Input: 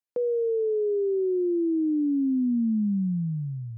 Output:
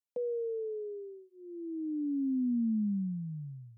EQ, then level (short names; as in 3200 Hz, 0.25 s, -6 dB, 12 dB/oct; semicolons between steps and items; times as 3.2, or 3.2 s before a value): dynamic EQ 170 Hz, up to -4 dB, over -41 dBFS, Q 4.1; fixed phaser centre 370 Hz, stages 6; -5.0 dB